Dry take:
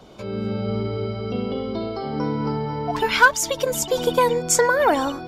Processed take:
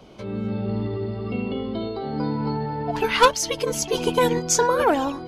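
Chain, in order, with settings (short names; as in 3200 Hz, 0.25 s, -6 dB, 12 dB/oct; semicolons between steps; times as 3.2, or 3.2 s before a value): formant shift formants -2 st; bell 9100 Hz -4 dB 0.27 oct; gain -1 dB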